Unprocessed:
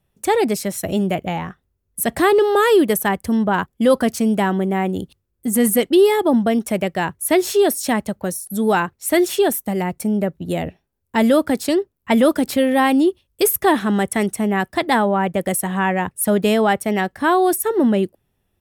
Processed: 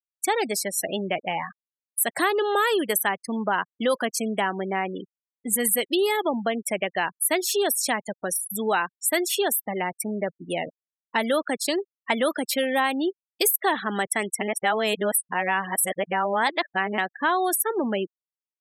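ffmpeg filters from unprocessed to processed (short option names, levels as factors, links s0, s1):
-filter_complex "[0:a]asplit=3[s0][s1][s2];[s0]atrim=end=14.412[s3];[s1]atrim=start=14.408:end=16.982,asetpts=PTS-STARTPTS,areverse[s4];[s2]atrim=start=16.978[s5];[s3][s4]acrossfade=d=0.004:c1=hsin:c2=hsin[s6];[s6][s5]acrossfade=d=0.004:c1=hsin:c2=hsin,highpass=f=1100:p=1,afftfilt=real='re*gte(hypot(re,im),0.0316)':imag='im*gte(hypot(re,im),0.0316)':win_size=1024:overlap=0.75,acompressor=threshold=0.0501:ratio=2,volume=1.5"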